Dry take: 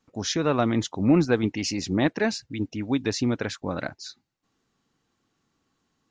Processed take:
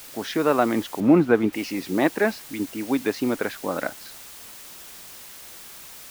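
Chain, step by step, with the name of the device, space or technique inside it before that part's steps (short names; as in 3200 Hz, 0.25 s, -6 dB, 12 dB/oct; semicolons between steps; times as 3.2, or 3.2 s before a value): wax cylinder (BPF 280–2400 Hz; wow and flutter; white noise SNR 17 dB); 1–1.53 tone controls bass +5 dB, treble -12 dB; gain +4.5 dB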